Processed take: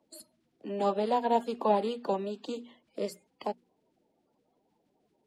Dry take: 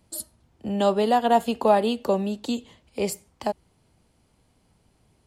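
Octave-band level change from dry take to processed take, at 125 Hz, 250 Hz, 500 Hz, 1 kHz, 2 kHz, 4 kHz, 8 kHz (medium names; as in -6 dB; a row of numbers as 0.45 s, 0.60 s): no reading, -9.5 dB, -7.0 dB, -7.0 dB, -11.0 dB, -10.5 dB, -16.0 dB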